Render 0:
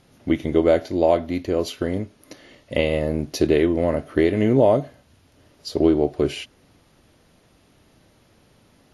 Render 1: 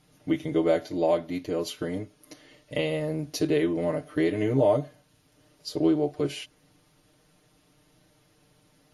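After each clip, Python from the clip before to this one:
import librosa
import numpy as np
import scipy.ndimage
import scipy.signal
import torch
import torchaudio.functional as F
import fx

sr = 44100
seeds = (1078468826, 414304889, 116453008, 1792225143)

y = fx.high_shelf(x, sr, hz=5500.0, db=6.0)
y = y + 0.93 * np.pad(y, (int(6.6 * sr / 1000.0), 0))[:len(y)]
y = y * librosa.db_to_amplitude(-9.0)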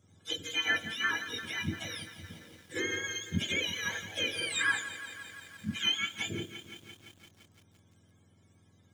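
y = fx.octave_mirror(x, sr, pivot_hz=1000.0)
y = fx.echo_crushed(y, sr, ms=171, feedback_pct=80, bits=8, wet_db=-13.0)
y = y * librosa.db_to_amplitude(-4.0)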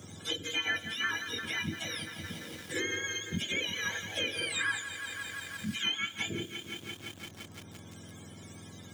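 y = fx.band_squash(x, sr, depth_pct=70)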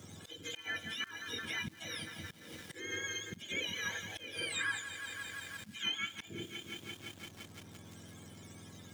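y = fx.auto_swell(x, sr, attack_ms=240.0)
y = fx.dmg_crackle(y, sr, seeds[0], per_s=450.0, level_db=-46.0)
y = y * librosa.db_to_amplitude(-4.0)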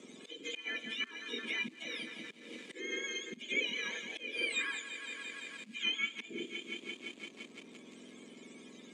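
y = fx.cabinet(x, sr, low_hz=230.0, low_slope=24, high_hz=7900.0, hz=(240.0, 420.0, 800.0, 1500.0, 2400.0, 5500.0), db=(8, 7, -7, -9, 8, -8))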